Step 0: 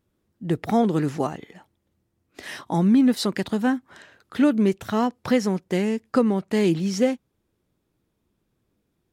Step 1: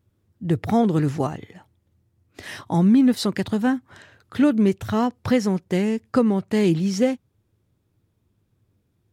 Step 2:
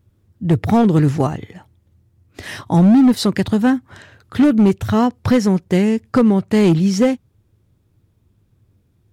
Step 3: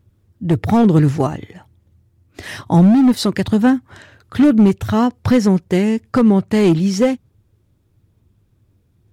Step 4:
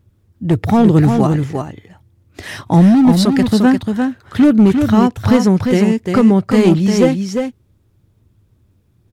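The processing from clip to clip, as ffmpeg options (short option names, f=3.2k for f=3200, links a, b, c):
-af "equalizer=f=100:w=1.8:g=14.5"
-af "lowshelf=f=120:g=7.5,volume=12.5dB,asoftclip=hard,volume=-12.5dB,volume=5dB"
-af "aphaser=in_gain=1:out_gain=1:delay=3.5:decay=0.2:speed=1.1:type=sinusoidal"
-af "aecho=1:1:349:0.531,volume=1.5dB"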